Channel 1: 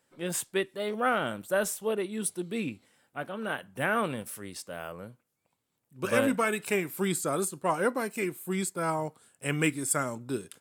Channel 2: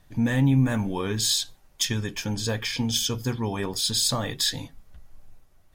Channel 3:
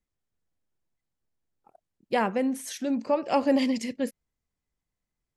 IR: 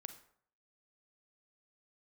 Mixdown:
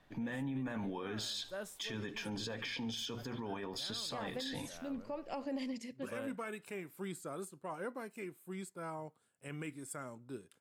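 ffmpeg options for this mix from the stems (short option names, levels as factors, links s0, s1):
-filter_complex "[0:a]highshelf=f=3800:g=-6.5,volume=0.224[s0];[1:a]acrossover=split=190 4000:gain=0.224 1 0.178[s1][s2][s3];[s1][s2][s3]amix=inputs=3:normalize=0,alimiter=level_in=1.19:limit=0.0631:level=0:latency=1:release=73,volume=0.841,volume=0.794,asplit=3[s4][s5][s6];[s5]volume=0.0794[s7];[2:a]adelay=2000,volume=0.178,asplit=2[s8][s9];[s9]volume=0.211[s10];[s6]apad=whole_len=467586[s11];[s0][s11]sidechaincompress=threshold=0.00794:ratio=8:attack=16:release=358[s12];[3:a]atrim=start_sample=2205[s13];[s10][s13]afir=irnorm=-1:irlink=0[s14];[s7]aecho=0:1:72|144|216|288|360|432|504|576:1|0.56|0.314|0.176|0.0983|0.0551|0.0308|0.0173[s15];[s12][s4][s8][s14][s15]amix=inputs=5:normalize=0,alimiter=level_in=2.51:limit=0.0631:level=0:latency=1:release=37,volume=0.398"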